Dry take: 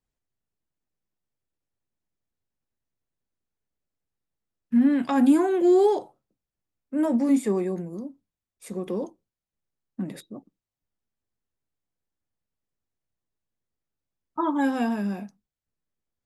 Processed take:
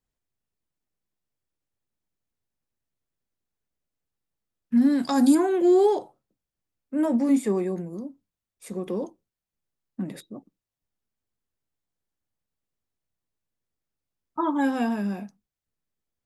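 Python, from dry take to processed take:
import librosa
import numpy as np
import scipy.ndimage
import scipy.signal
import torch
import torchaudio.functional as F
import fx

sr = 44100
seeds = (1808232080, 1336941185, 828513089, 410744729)

y = fx.high_shelf_res(x, sr, hz=3600.0, db=8.5, q=3.0, at=(4.77, 5.35))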